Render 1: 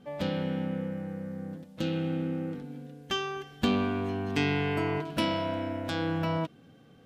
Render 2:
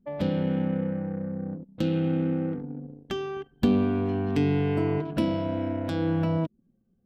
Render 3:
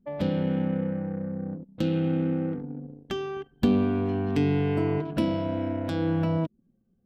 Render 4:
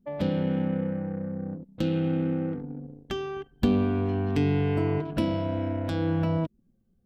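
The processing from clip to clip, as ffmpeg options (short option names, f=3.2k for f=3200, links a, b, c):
-filter_complex "[0:a]anlmdn=0.251,bandreject=f=6.5k:w=17,acrossover=split=580[a][b];[b]acompressor=threshold=-45dB:ratio=5[c];[a][c]amix=inputs=2:normalize=0,volume=5.5dB"
-af anull
-af "asubboost=boost=2:cutoff=110"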